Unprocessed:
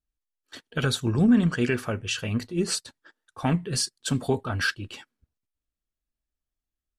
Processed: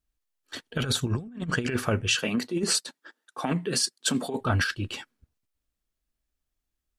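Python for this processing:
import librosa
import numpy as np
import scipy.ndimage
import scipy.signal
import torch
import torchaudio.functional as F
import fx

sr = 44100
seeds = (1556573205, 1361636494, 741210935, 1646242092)

y = fx.highpass(x, sr, hz=190.0, slope=24, at=(2.15, 4.41))
y = fx.over_compress(y, sr, threshold_db=-27.0, ratio=-0.5)
y = F.gain(torch.from_numpy(y), 1.5).numpy()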